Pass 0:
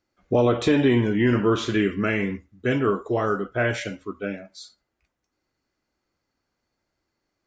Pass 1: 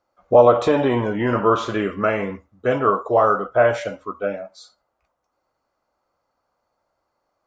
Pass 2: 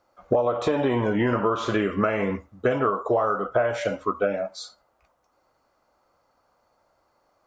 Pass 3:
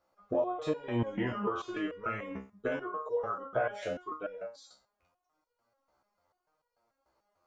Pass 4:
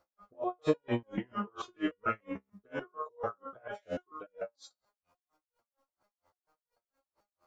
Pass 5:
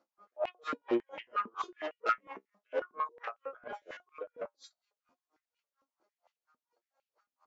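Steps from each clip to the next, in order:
flat-topped bell 810 Hz +13.5 dB; level −2.5 dB
downward compressor 20 to 1, threshold −25 dBFS, peak gain reduction 19 dB; level +6.5 dB
step-sequenced resonator 6.8 Hz 66–480 Hz
tremolo with a sine in dB 4.3 Hz, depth 39 dB; level +5.5 dB
tube saturation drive 30 dB, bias 0.6; downsampling to 16,000 Hz; high-pass on a step sequencer 11 Hz 250–2,600 Hz

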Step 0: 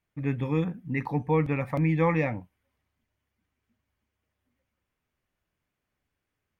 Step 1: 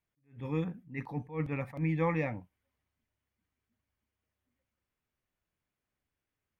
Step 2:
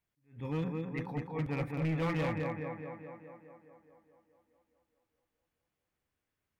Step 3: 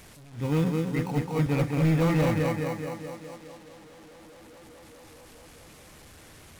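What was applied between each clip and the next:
level that may rise only so fast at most 180 dB per second; level −6 dB
on a send: tape delay 210 ms, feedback 70%, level −4 dB, low-pass 3,200 Hz; on the sum: hard clipping −28.5 dBFS, distortion −11 dB
linear delta modulator 64 kbit/s, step −52.5 dBFS; in parallel at −8.5 dB: sample-rate reduction 1,700 Hz; on the sum: level +7.5 dB

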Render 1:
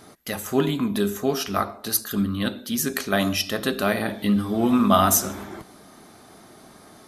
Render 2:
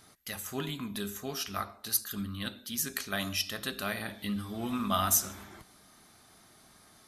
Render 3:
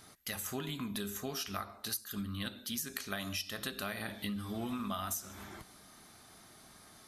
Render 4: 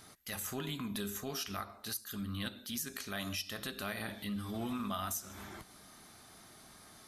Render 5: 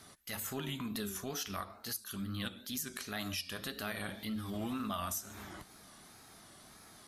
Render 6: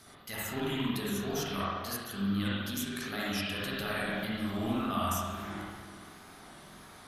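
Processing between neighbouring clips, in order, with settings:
parametric band 390 Hz −11 dB 3 octaves; level −5.5 dB
downward compressor 12 to 1, threshold −36 dBFS, peak gain reduction 16 dB; level +1.5 dB
transient designer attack −7 dB, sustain −2 dB; level +1 dB
tape wow and flutter 110 cents
convolution reverb RT60 1.5 s, pre-delay 45 ms, DRR −6.5 dB

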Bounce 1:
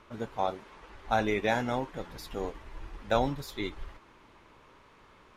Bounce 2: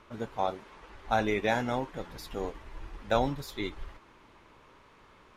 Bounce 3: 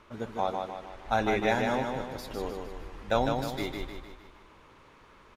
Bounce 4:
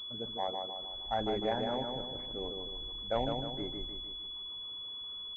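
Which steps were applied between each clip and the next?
no processing that can be heard
repeating echo 153 ms, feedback 48%, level −4.5 dB
spectral envelope exaggerated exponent 1.5; switching amplifier with a slow clock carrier 3,400 Hz; level −6 dB

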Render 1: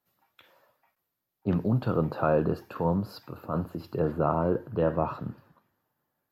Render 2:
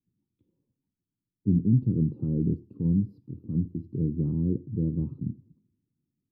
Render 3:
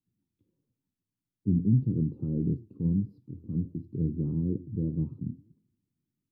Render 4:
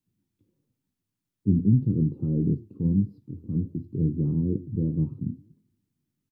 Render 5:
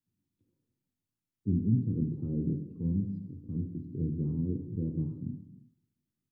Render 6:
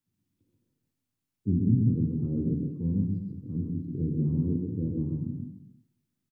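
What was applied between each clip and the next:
inverse Chebyshev low-pass filter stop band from 600 Hz, stop band 40 dB; level +4.5 dB
flanger 1.6 Hz, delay 6.1 ms, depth 6.4 ms, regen +81%; level +2 dB
double-tracking delay 20 ms −12 dB; level +4 dB
reverb whose tail is shaped and stops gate 420 ms falling, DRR 6 dB; level −7.5 dB
single-tap delay 133 ms −3 dB; level +2.5 dB

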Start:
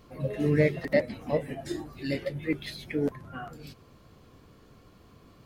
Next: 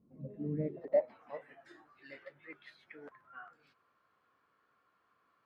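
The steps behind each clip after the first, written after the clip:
tape wow and flutter 21 cents
band-pass filter sweep 210 Hz → 1,400 Hz, 0:00.61–0:01.20
dynamic equaliser 690 Hz, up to +5 dB, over −46 dBFS, Q 0.89
level −6.5 dB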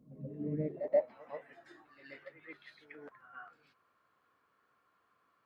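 backwards echo 131 ms −11.5 dB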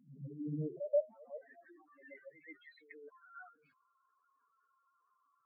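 expanding power law on the bin magnitudes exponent 3.6
level −2 dB

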